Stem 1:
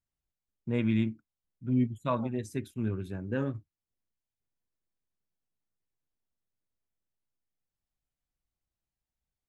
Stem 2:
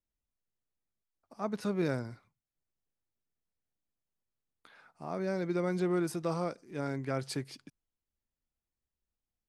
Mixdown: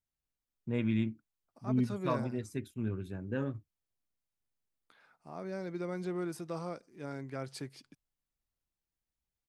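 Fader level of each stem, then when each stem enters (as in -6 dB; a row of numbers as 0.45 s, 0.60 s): -3.5 dB, -6.0 dB; 0.00 s, 0.25 s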